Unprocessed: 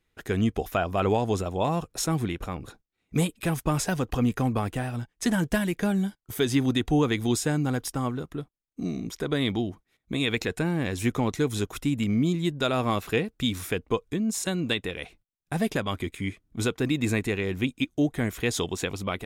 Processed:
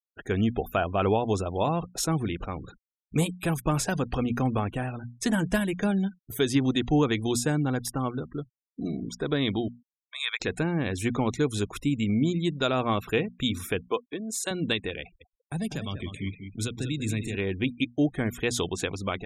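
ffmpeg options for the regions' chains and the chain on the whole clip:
ffmpeg -i in.wav -filter_complex "[0:a]asettb=1/sr,asplit=3[link_01][link_02][link_03];[link_01]atrim=end=9.684[link_04];[link_02]atrim=start=9.68:end=10.4,asetpts=PTS-STARTPTS,afade=type=in:duration=0.004:curve=qsin,afade=type=out:start_time=0.716:duration=0.004:curve=qsin,highpass=frequency=950:width=0.5412,highpass=frequency=950:width=1.3066,bandreject=frequency=2800:width=6.5[link_05];[link_03]atrim=start=10.396[link_06];[link_04][link_05]acrossfade=duration=0.004:curve1=hsin:curve2=qsin[link_07];[link_07][link_06]acrossfade=duration=0.004:curve1=qsin:curve2=hsin,asettb=1/sr,asplit=3[link_08][link_09][link_10];[link_08]atrim=end=13.904[link_11];[link_09]atrim=start=13.9:end=14.51,asetpts=PTS-STARTPTS,afade=type=in:duration=0.004:curve=qsin,afade=type=out:start_time=0.606:duration=0.004:curve=qsin,highpass=360,bandreject=frequency=5500:width=17[link_12];[link_10]atrim=start=14.506[link_13];[link_11][link_12]acrossfade=duration=0.004:curve1=hsin:curve2=qsin[link_14];[link_14][link_13]acrossfade=duration=0.004:curve1=qsin:curve2=hsin,asettb=1/sr,asplit=3[link_15][link_16][link_17];[link_15]atrim=end=15.014[link_18];[link_16]atrim=start=15.01:end=17.35,asetpts=PTS-STARTPTS,afade=type=in:duration=0.004:curve=qsin,afade=type=out:start_time=2.336:duration=0.004:curve=qsin,acrossover=split=220|3000[link_19][link_20][link_21];[link_20]acompressor=threshold=-41dB:ratio=2.5:attack=3.2:release=140:knee=2.83:detection=peak[link_22];[link_19][link_22][link_21]amix=inputs=3:normalize=0,aecho=1:1:194|388|582|776:0.376|0.135|0.0487|0.0175,atrim=end_sample=103194[link_23];[link_17]atrim=start=17.346[link_24];[link_18][link_23]acrossfade=duration=0.004:curve1=hsin:curve2=qsin[link_25];[link_25][link_24]acrossfade=duration=0.004:curve1=qsin:curve2=hsin,bandreject=frequency=60:width_type=h:width=6,bandreject=frequency=120:width_type=h:width=6,bandreject=frequency=180:width_type=h:width=6,bandreject=frequency=240:width_type=h:width=6,afftfilt=real='re*gte(hypot(re,im),0.00891)':imag='im*gte(hypot(re,im),0.00891)':win_size=1024:overlap=0.75,bandreject=frequency=2000:width=17" out.wav

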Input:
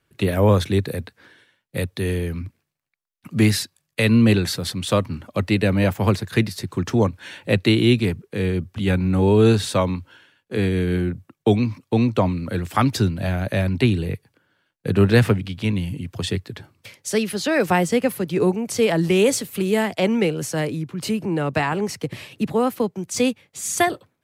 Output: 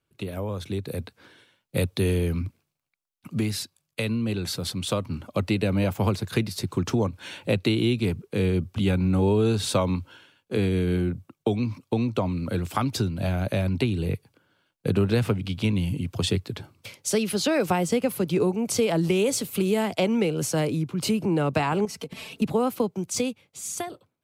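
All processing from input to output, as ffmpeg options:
ffmpeg -i in.wav -filter_complex "[0:a]asettb=1/sr,asplit=3[link_01][link_02][link_03];[link_01]atrim=end=21.854[link_04];[link_02]atrim=start=21.85:end=22.42,asetpts=PTS-STARTPTS,afade=type=in:duration=0.004:curve=qsin,afade=type=out:start_time=0.566:duration=0.004:curve=qsin,acompressor=threshold=-36dB:ratio=5:attack=3.2:release=140:knee=1:detection=peak,aecho=1:1:4.5:0.78,atrim=end_sample=25137[link_05];[link_03]atrim=start=22.416[link_06];[link_04][link_05]acrossfade=duration=0.004:curve1=hsin:curve2=qsin[link_07];[link_07][link_06]acrossfade=duration=0.004:curve1=qsin:curve2=hsin,acompressor=threshold=-20dB:ratio=6,equalizer=frequency=1800:width_type=o:width=0.31:gain=-8.5,dynaudnorm=framelen=120:gausssize=17:maxgain=11.5dB,volume=-8.5dB" out.wav

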